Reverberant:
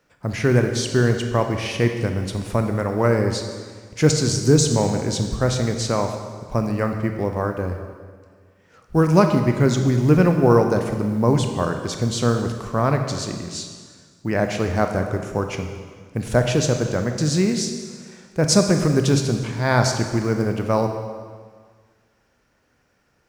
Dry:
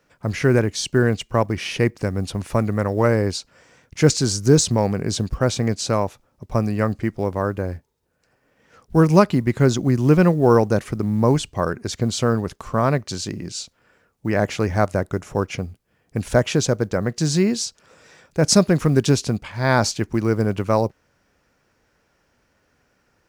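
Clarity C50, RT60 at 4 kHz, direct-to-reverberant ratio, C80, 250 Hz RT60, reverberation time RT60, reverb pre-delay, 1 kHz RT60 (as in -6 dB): 6.0 dB, 1.6 s, 5.0 dB, 7.5 dB, 1.7 s, 1.7 s, 23 ms, 1.7 s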